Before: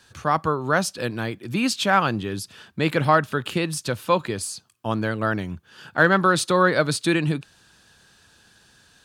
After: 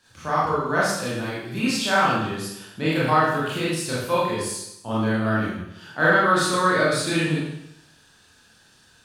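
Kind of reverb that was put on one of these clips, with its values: Schroeder reverb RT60 0.8 s, combs from 25 ms, DRR -8.5 dB; gain -8.5 dB

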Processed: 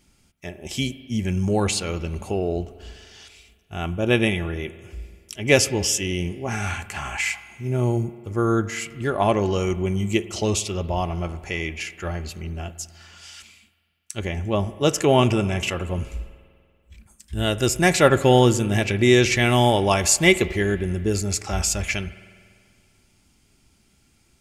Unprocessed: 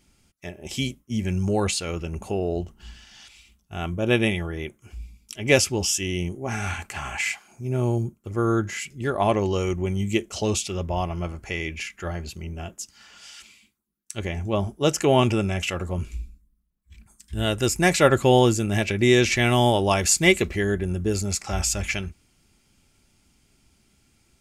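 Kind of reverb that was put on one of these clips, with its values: spring tank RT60 2 s, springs 48 ms, chirp 50 ms, DRR 15 dB; gain +1.5 dB

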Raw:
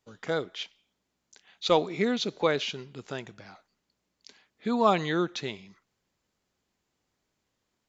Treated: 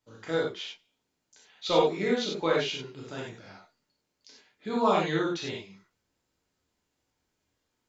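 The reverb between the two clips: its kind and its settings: non-linear reverb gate 0.12 s flat, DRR -4.5 dB; gain -6 dB

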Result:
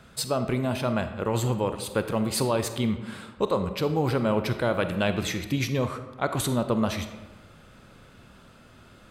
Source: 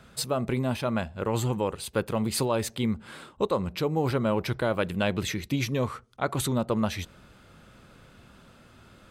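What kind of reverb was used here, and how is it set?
digital reverb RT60 1.2 s, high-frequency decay 0.6×, pre-delay 5 ms, DRR 8.5 dB; gain +1 dB

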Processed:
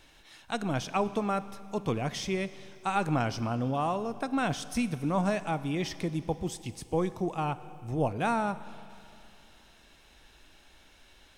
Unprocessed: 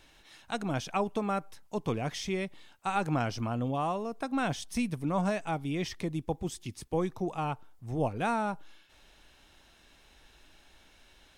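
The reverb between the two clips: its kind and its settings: Schroeder reverb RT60 2.7 s, combs from 31 ms, DRR 14.5 dB; gain +1.5 dB

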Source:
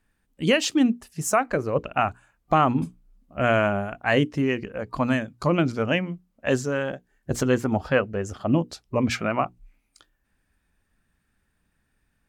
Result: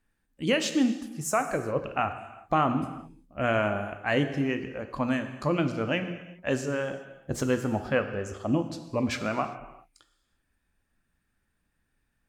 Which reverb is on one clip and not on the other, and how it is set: non-linear reverb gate 0.42 s falling, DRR 7.5 dB; gain -5 dB

